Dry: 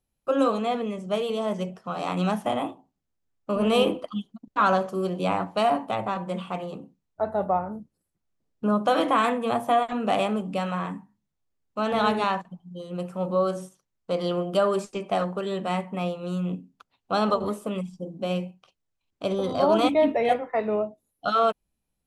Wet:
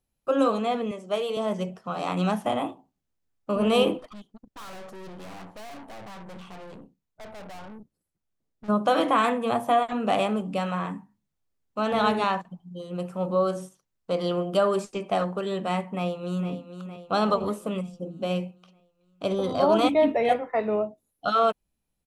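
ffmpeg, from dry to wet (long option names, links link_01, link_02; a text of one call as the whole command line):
ffmpeg -i in.wav -filter_complex "[0:a]asettb=1/sr,asplit=3[link_01][link_02][link_03];[link_01]atrim=end=0.914[link_04];[link_02]atrim=start=0.91:end=1.37,asetpts=PTS-STARTPTS,afade=type=in:duration=0.004:curve=qsin,afade=type=out:start_time=0.456:duration=0.004:curve=qsin,highpass=310[link_05];[link_03]atrim=start=1.366[link_06];[link_04][link_05]acrossfade=duration=0.004:curve1=hsin:curve2=qsin[link_07];[link_07][link_06]acrossfade=duration=0.004:curve1=qsin:curve2=hsin,asplit=3[link_08][link_09][link_10];[link_08]afade=type=out:start_time=3.98:duration=0.02[link_11];[link_09]aeval=exprs='(tanh(112*val(0)+0.65)-tanh(0.65))/112':channel_layout=same,afade=type=in:start_time=3.98:duration=0.02,afade=type=out:start_time=8.68:duration=0.02[link_12];[link_10]afade=type=in:start_time=8.68:duration=0.02[link_13];[link_11][link_12][link_13]amix=inputs=3:normalize=0,asplit=2[link_14][link_15];[link_15]afade=type=in:start_time=15.93:duration=0.01,afade=type=out:start_time=16.5:duration=0.01,aecho=0:1:460|920|1380|1840|2300|2760:0.316228|0.173925|0.0956589|0.0526124|0.0289368|0.0159152[link_16];[link_14][link_16]amix=inputs=2:normalize=0" out.wav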